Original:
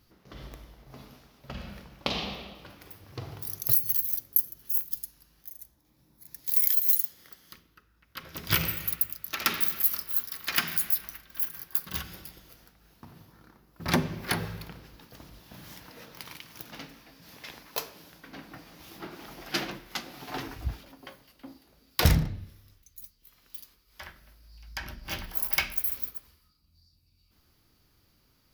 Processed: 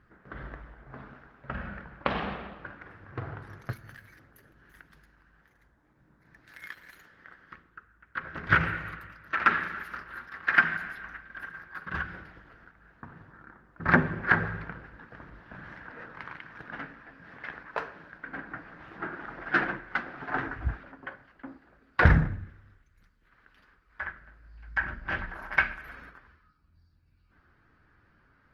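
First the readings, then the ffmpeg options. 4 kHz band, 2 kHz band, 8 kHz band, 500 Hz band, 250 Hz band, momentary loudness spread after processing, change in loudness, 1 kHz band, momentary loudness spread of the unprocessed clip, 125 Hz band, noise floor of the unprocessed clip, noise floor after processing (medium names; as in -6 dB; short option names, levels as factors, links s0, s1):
-11.5 dB, +9.5 dB, under -25 dB, +2.5 dB, +2.0 dB, 23 LU, -3.0 dB, +7.0 dB, 23 LU, +2.0 dB, -67 dBFS, -66 dBFS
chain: -af "lowpass=f=1600:t=q:w=4.4,volume=1.26" -ar 48000 -c:a libopus -b:a 20k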